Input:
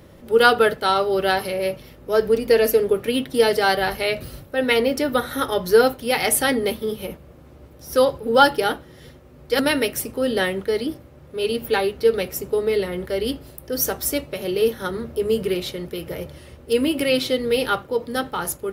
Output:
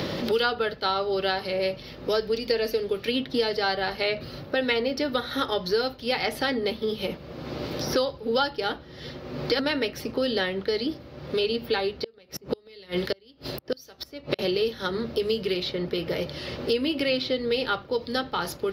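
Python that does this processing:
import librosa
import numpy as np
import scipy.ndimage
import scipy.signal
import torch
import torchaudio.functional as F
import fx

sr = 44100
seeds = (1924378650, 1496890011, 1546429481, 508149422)

y = fx.gate_flip(x, sr, shuts_db=-16.0, range_db=-35, at=(11.97, 14.39))
y = fx.high_shelf_res(y, sr, hz=6300.0, db=-11.5, q=3.0)
y = fx.band_squash(y, sr, depth_pct=100)
y = F.gain(torch.from_numpy(y), -6.5).numpy()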